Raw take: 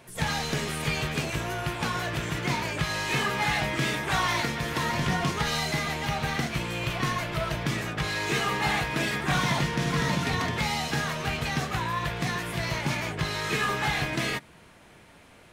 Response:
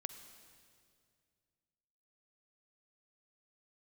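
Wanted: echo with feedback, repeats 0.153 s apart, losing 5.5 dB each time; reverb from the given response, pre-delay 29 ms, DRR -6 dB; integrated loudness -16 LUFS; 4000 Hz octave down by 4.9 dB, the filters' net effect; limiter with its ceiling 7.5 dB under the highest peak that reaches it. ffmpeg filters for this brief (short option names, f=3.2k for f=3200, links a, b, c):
-filter_complex "[0:a]equalizer=f=4k:t=o:g=-6.5,alimiter=limit=-21.5dB:level=0:latency=1,aecho=1:1:153|306|459|612|765|918|1071:0.531|0.281|0.149|0.079|0.0419|0.0222|0.0118,asplit=2[a][b];[1:a]atrim=start_sample=2205,adelay=29[c];[b][c]afir=irnorm=-1:irlink=0,volume=8.5dB[d];[a][d]amix=inputs=2:normalize=0,volume=6.5dB"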